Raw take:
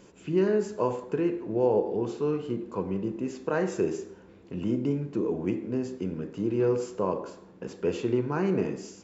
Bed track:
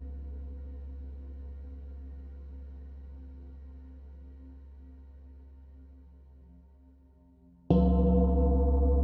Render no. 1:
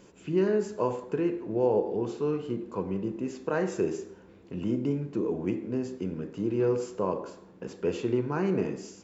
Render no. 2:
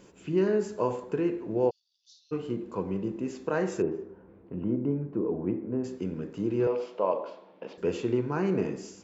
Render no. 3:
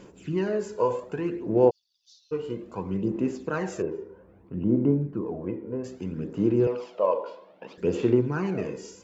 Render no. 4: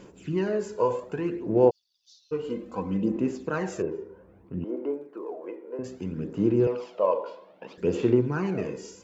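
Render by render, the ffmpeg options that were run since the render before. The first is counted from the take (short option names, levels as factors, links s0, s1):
-af "volume=0.891"
-filter_complex "[0:a]asplit=3[s0][s1][s2];[s0]afade=t=out:st=1.69:d=0.02[s3];[s1]asuperpass=centerf=4800:order=8:qfactor=1.8,afade=t=in:st=1.69:d=0.02,afade=t=out:st=2.31:d=0.02[s4];[s2]afade=t=in:st=2.31:d=0.02[s5];[s3][s4][s5]amix=inputs=3:normalize=0,asettb=1/sr,asplit=3[s6][s7][s8];[s6]atrim=end=3.824[s9];[s7]atrim=start=3.82:end=5.84,asetpts=PTS-STARTPTS,afade=t=in:d=0.004:c=qsin,afade=t=out:st=2.016:d=0.004:c=qsin,lowpass=1300[s10];[s8]atrim=start=5.836[s11];[s9][s10]acrossfade=d=0.004:c1=hsin:c2=qsin[s12];[s12][s11]acrossfade=d=0.004:c1=qsin:c2=hsin,asettb=1/sr,asplit=3[s13][s14][s15];[s13]atrim=end=6.674[s16];[s14]atrim=start=6.67:end=7.78,asetpts=PTS-STARTPTS,afade=t=in:d=0.004:c=qsin,afade=t=out:st=1.106:d=0.004:c=qsin,highpass=330,equalizer=f=380:t=q:w=4:g=-5,equalizer=f=610:t=q:w=4:g=9,equalizer=f=900:t=q:w=4:g=4,equalizer=f=1600:t=q:w=4:g=-4,equalizer=f=2300:t=q:w=4:g=4,equalizer=f=3200:t=q:w=4:g=5,lowpass=f=4400:w=0.5412,lowpass=f=4400:w=1.3066[s17];[s15]atrim=start=7.776[s18];[s16][s17]acrossfade=d=0.004:c1=hsin:c2=qsin[s19];[s19][s18]acrossfade=d=0.004:c1=qsin:c2=hsin"
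-af "aphaser=in_gain=1:out_gain=1:delay=2.1:decay=0.53:speed=0.62:type=sinusoidal"
-filter_complex "[0:a]asettb=1/sr,asplit=3[s0][s1][s2];[s0]atrim=end=2.444[s3];[s1]atrim=start=2.44:end=3.17,asetpts=PTS-STARTPTS,afade=t=in:d=0.004:c=qsin,afade=t=out:st=0.726:d=0.004:c=qsin,aecho=1:1:3.9:0.74,atrim=end_sample=32193[s4];[s2]atrim=start=3.166[s5];[s3][s4]acrossfade=d=0.004:c1=hsin:c2=qsin[s6];[s6][s5]acrossfade=d=0.004:c1=qsin:c2=hsin,asettb=1/sr,asplit=3[s7][s8][s9];[s7]atrim=end=4.644[s10];[s8]atrim=start=4.64:end=5.79,asetpts=PTS-STARTPTS,afade=t=in:d=0.004:c=qsin,afade=t=out:st=1.146:d=0.004:c=qsin,highpass=f=400:w=0.5412,highpass=f=400:w=1.3066[s11];[s9]atrim=start=5.786[s12];[s10][s11]acrossfade=d=0.004:c1=hsin:c2=qsin[s13];[s13][s12]acrossfade=d=0.004:c1=qsin:c2=hsin"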